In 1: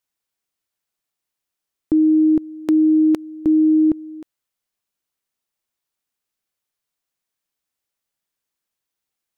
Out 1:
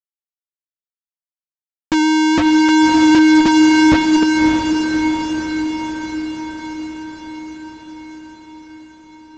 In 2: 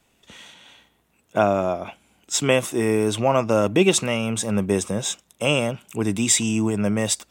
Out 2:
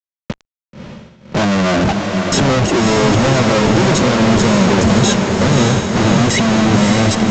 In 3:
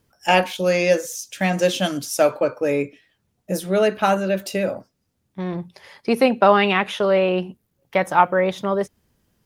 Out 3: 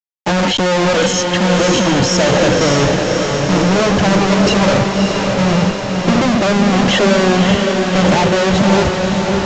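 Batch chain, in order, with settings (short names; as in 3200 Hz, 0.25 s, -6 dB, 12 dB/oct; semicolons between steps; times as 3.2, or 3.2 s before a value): flange 0.92 Hz, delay 4.3 ms, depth 1.5 ms, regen -63%; HPF 59 Hz 24 dB/oct; gate -40 dBFS, range -16 dB; low shelf 230 Hz +9.5 dB; in parallel at -1.5 dB: negative-ratio compressor -25 dBFS, ratio -1; on the sum: limiter -13.5 dBFS; running mean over 37 samples; soft clip -31 dBFS; reverb removal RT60 1.5 s; fuzz box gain 66 dB, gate -59 dBFS; diffused feedback echo 0.588 s, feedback 66%, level -3.5 dB; µ-law 128 kbps 16000 Hz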